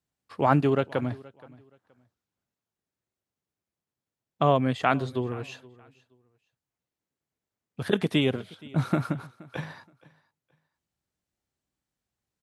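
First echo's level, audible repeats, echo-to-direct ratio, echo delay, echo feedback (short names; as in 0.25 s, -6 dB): -22.5 dB, 2, -22.5 dB, 0.473 s, 24%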